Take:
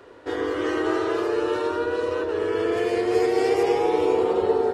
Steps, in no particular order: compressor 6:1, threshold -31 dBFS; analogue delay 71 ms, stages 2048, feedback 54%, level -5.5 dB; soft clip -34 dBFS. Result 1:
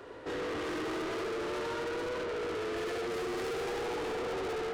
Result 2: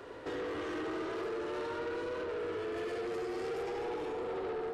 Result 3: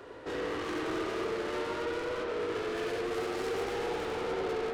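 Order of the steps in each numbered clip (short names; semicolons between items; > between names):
analogue delay > soft clip > compressor; compressor > analogue delay > soft clip; soft clip > compressor > analogue delay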